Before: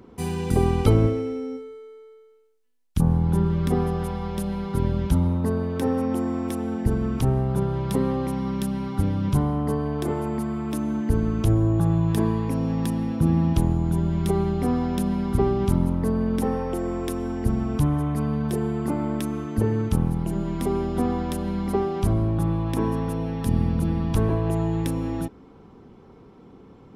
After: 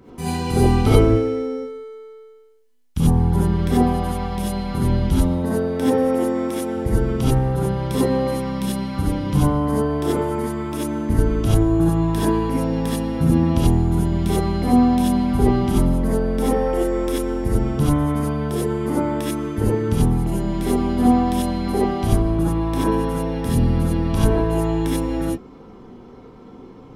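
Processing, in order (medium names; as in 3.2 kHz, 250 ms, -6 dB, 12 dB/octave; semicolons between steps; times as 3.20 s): gated-style reverb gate 110 ms rising, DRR -7.5 dB; trim -1.5 dB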